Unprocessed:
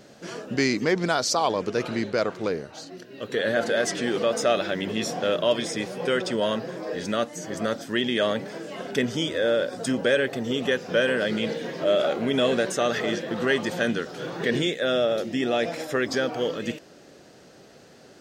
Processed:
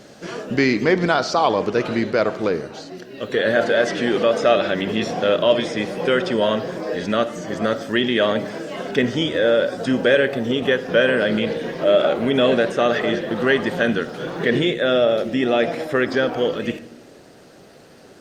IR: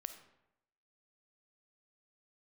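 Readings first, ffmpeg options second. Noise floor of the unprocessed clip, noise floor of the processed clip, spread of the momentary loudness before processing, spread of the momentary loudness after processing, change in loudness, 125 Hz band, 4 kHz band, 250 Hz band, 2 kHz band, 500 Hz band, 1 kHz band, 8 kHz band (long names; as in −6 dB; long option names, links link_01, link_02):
−51 dBFS, −46 dBFS, 8 LU, 8 LU, +5.5 dB, +5.5 dB, +3.5 dB, +6.0 dB, +5.5 dB, +6.0 dB, +6.0 dB, can't be measured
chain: -filter_complex "[0:a]acrossover=split=4300[link_01][link_02];[link_02]acompressor=threshold=-52dB:ratio=4:attack=1:release=60[link_03];[link_01][link_03]amix=inputs=2:normalize=0,lowshelf=frequency=270:gain=-8,asplit=2[link_04][link_05];[1:a]atrim=start_sample=2205,lowshelf=frequency=370:gain=11[link_06];[link_05][link_06]afir=irnorm=-1:irlink=0,volume=3.5dB[link_07];[link_04][link_07]amix=inputs=2:normalize=0" -ar 48000 -c:a libopus -b:a 48k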